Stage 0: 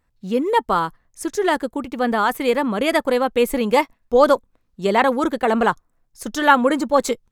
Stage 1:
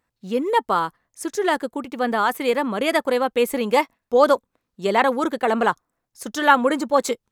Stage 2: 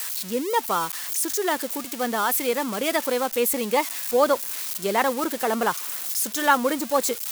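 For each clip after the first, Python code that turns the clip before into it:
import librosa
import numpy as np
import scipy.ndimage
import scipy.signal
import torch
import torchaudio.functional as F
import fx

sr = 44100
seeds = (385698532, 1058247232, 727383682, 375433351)

y1 = fx.highpass(x, sr, hz=220.0, slope=6)
y1 = y1 * 10.0 ** (-1.0 / 20.0)
y2 = y1 + 0.5 * 10.0 ** (-16.0 / 20.0) * np.diff(np.sign(y1), prepend=np.sign(y1[:1]))
y2 = y2 * 10.0 ** (-4.0 / 20.0)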